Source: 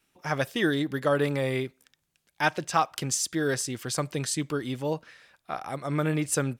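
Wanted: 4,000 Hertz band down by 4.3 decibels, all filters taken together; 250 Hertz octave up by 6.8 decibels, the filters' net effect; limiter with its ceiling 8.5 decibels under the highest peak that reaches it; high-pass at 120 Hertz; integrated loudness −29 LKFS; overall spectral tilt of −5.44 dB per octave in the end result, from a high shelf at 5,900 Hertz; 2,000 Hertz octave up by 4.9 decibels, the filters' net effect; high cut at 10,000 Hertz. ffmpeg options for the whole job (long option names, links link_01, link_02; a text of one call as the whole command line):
ffmpeg -i in.wav -af "highpass=120,lowpass=10000,equalizer=frequency=250:width_type=o:gain=9,equalizer=frequency=2000:width_type=o:gain=8,equalizer=frequency=4000:width_type=o:gain=-6.5,highshelf=frequency=5900:gain=-4.5,volume=-2.5dB,alimiter=limit=-16.5dB:level=0:latency=1" out.wav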